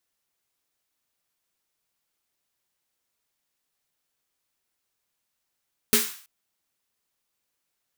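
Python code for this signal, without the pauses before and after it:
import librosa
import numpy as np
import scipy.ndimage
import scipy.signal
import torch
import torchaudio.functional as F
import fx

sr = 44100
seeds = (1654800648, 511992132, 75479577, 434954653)

y = fx.drum_snare(sr, seeds[0], length_s=0.33, hz=230.0, second_hz=420.0, noise_db=4, noise_from_hz=1100.0, decay_s=0.24, noise_decay_s=0.49)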